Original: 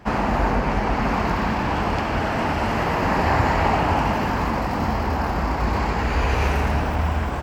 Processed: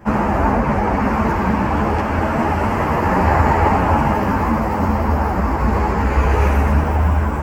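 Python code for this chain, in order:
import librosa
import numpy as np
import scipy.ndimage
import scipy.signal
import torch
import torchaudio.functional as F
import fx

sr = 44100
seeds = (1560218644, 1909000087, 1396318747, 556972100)

y = fx.peak_eq(x, sr, hz=3900.0, db=-13.0, octaves=1.3)
y = fx.notch(y, sr, hz=720.0, q=18.0)
y = fx.ensemble(y, sr)
y = F.gain(torch.from_numpy(y), 8.5).numpy()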